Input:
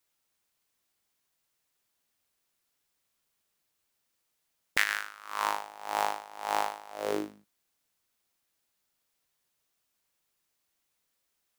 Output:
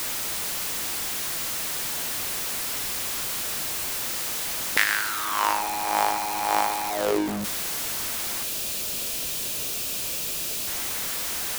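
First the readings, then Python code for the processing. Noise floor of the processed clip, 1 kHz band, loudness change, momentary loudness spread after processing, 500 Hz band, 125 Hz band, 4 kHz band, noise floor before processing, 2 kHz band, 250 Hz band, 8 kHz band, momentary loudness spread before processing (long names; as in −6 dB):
−30 dBFS, +8.5 dB, +7.0 dB, 3 LU, +8.0 dB, +18.0 dB, +14.5 dB, −79 dBFS, +7.5 dB, +11.5 dB, +21.5 dB, 9 LU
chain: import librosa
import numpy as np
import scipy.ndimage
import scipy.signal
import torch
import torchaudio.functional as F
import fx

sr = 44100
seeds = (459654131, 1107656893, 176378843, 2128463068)

y = x + 0.5 * 10.0 ** (-26.5 / 20.0) * np.sign(x)
y = fx.spec_box(y, sr, start_s=8.43, length_s=2.24, low_hz=710.0, high_hz=2300.0, gain_db=-7)
y = y * librosa.db_to_amplitude(3.5)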